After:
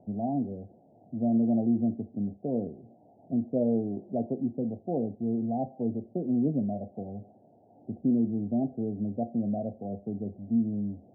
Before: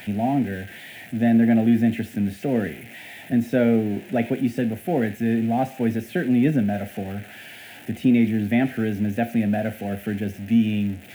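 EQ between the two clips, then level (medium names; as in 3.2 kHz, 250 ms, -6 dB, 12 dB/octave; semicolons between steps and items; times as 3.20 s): steep low-pass 760 Hz 48 dB/octave; bass shelf 64 Hz -9.5 dB; -7.0 dB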